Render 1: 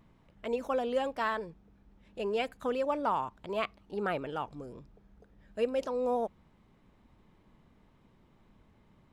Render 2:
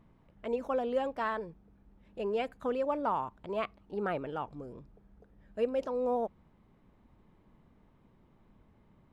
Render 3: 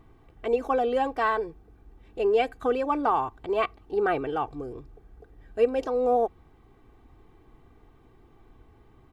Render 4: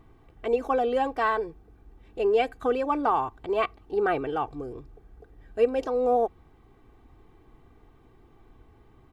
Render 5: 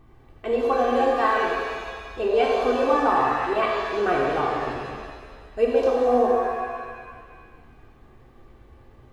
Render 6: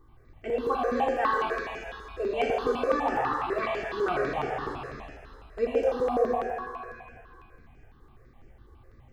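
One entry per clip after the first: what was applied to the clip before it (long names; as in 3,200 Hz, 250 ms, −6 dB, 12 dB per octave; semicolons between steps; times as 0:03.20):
high-shelf EQ 2,500 Hz −9.5 dB
comb filter 2.6 ms, depth 72%; level +6.5 dB
no processing that can be heard
reverb with rising layers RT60 1.8 s, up +7 semitones, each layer −8 dB, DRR −2.5 dB
step-sequenced phaser 12 Hz 680–3,800 Hz; level −2.5 dB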